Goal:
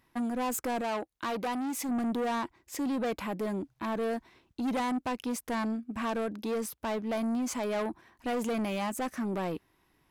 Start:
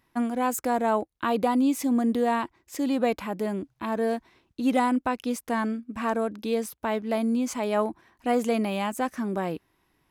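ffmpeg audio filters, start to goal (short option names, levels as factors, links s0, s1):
-filter_complex "[0:a]asoftclip=type=tanh:threshold=0.0422,asettb=1/sr,asplit=3[s0][s1][s2];[s0]atrim=end=0.814[s3];[s1]atrim=start=0.81:end=1.89,asetpts=PTS-STARTPTS,afade=t=in:d=0.004:c=qsin,afade=t=out:st=1.076:d=0.004:c=qsin,lowshelf=f=320:g=-6[s4];[s2]atrim=start=1.886[s5];[s3][s4]acrossfade=d=0.004:c1=hsin:c2=qsin[s6];[s6][s5]acrossfade=d=0.004:c1=qsin:c2=hsin"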